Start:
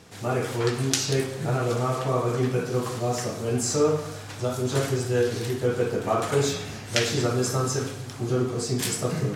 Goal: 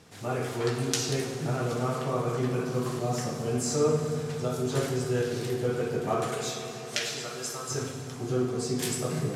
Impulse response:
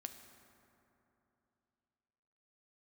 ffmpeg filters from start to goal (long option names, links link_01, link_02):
-filter_complex "[0:a]asettb=1/sr,asplit=3[link_01][link_02][link_03];[link_01]atrim=end=6.294[link_04];[link_02]atrim=start=6.29:end=7.71,asetpts=PTS-STARTPTS,afade=type=in:duration=0.004:curve=qsin,afade=type=out:start_time=1.416:duration=0.004:curve=qsin,highpass=frequency=1400:poles=1[link_05];[link_03]atrim=start=7.706[link_06];[link_04][link_05]acrossfade=duration=0.004:curve1=hsin:curve2=qsin[link_07];[link_07][link_06]acrossfade=duration=0.004:curve1=qsin:curve2=hsin[link_08];[1:a]atrim=start_sample=2205,asetrate=28224,aresample=44100[link_09];[link_08][link_09]afir=irnorm=-1:irlink=0,volume=-2dB"